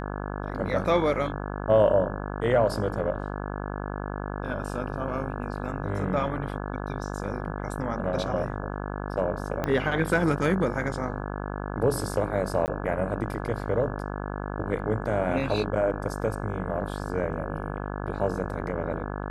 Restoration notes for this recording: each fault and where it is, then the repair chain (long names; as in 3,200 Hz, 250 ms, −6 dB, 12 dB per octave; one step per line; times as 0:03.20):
mains buzz 50 Hz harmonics 34 −33 dBFS
0:09.64: click −14 dBFS
0:12.66–0:12.68: drop-out 19 ms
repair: click removal
hum removal 50 Hz, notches 34
repair the gap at 0:12.66, 19 ms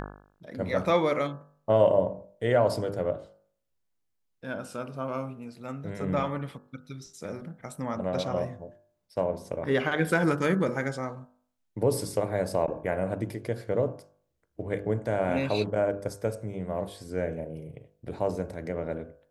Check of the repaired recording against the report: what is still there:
0:09.64: click